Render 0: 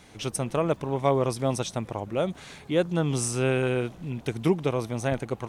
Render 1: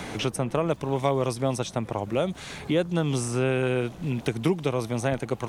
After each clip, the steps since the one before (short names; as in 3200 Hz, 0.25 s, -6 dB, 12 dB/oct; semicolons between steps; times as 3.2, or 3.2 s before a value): three-band squash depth 70%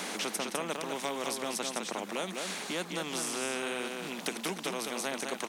elliptic high-pass 190 Hz, stop band 40 dB; on a send: echo 0.205 s -7.5 dB; on the sum: spectral compressor 2:1; gain -5.5 dB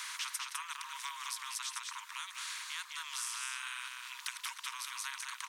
Chebyshev high-pass 940 Hz, order 8; gain -3 dB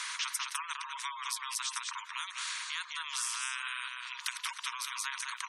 spectral gate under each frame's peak -15 dB strong; gain +4.5 dB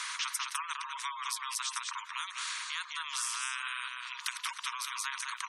bell 1200 Hz +3 dB 0.37 oct